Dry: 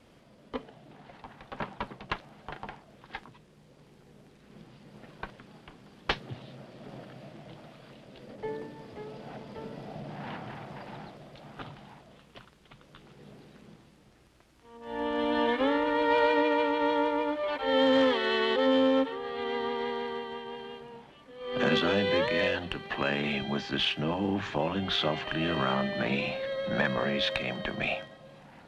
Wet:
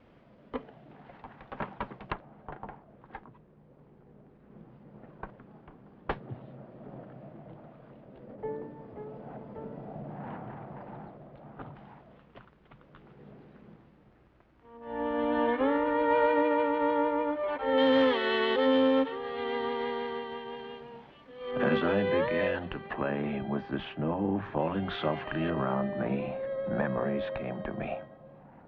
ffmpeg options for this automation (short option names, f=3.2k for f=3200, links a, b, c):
-af "asetnsamples=n=441:p=0,asendcmd='2.12 lowpass f 1200;11.75 lowpass f 1800;17.78 lowpass f 3600;21.51 lowpass f 1800;22.93 lowpass f 1200;24.57 lowpass f 1800;25.5 lowpass f 1100',lowpass=2.3k"